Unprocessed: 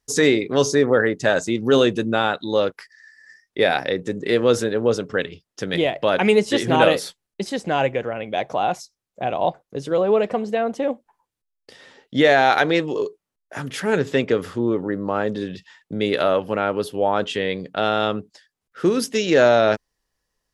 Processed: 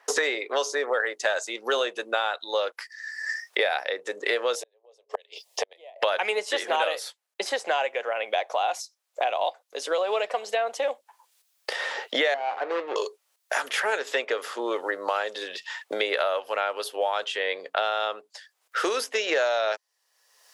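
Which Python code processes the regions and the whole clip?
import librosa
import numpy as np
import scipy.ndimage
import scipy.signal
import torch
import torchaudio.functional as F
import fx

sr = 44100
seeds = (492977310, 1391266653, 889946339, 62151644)

y = fx.chain(x, sr, fx.gate_flip(shuts_db=-14.0, range_db=-38),
    fx.fixed_phaser(hz=590.0, stages=4), at=(4.55, 6.02))
y = fx.chain(y, sr, fx.median_filter(points=41),
    fx.lowpass(hz=1900.0, slope=12), at=(12.34, 12.96))
y = scipy.signal.sosfilt(scipy.signal.butter(4, 560.0, 'highpass', fs=sr, output='sos'), y)
y = fx.band_squash(y, sr, depth_pct=100)
y = y * librosa.db_to_amplitude(-3.0)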